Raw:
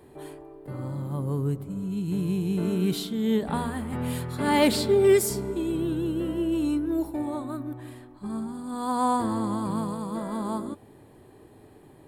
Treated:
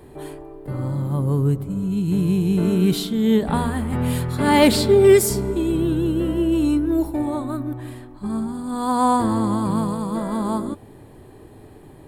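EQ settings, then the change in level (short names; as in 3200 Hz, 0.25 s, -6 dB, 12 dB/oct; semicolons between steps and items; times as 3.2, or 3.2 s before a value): low shelf 78 Hz +10 dB; +6.0 dB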